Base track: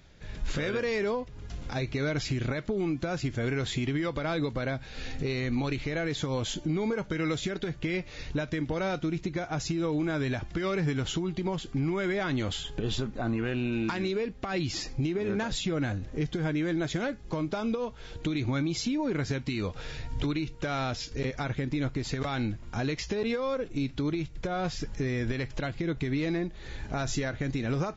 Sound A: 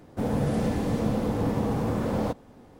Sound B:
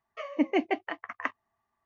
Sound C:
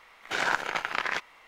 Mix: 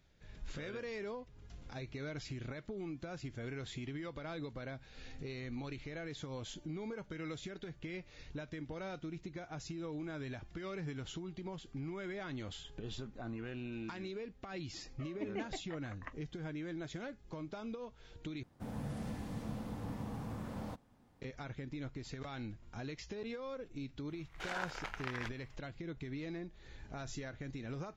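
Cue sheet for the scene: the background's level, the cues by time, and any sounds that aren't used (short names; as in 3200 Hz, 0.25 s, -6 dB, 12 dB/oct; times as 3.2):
base track -13.5 dB
14.82 add B -16.5 dB
18.43 replace with A -13.5 dB + bell 440 Hz -8.5 dB 1.2 oct
24.09 add C -14 dB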